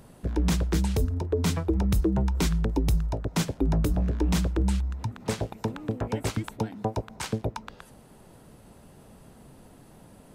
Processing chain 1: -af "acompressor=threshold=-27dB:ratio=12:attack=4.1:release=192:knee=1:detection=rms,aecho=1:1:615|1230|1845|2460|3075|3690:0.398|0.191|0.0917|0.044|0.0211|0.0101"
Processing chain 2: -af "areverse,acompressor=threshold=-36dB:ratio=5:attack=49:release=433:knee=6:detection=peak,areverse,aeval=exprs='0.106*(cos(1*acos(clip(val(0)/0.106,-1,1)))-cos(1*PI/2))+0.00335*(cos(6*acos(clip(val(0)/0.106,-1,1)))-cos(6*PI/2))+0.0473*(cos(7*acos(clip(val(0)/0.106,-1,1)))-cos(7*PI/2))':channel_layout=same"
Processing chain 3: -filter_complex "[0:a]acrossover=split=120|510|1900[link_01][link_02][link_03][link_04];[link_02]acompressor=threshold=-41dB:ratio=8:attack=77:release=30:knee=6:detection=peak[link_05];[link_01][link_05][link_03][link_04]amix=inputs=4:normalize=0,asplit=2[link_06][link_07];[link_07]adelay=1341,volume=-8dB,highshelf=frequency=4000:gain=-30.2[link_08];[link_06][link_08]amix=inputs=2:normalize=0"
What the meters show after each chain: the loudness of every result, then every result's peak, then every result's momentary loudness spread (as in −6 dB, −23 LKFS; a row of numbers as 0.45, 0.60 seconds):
−34.0, −38.0, −29.5 LKFS; −17.5, −18.5, −13.0 dBFS; 18, 10, 15 LU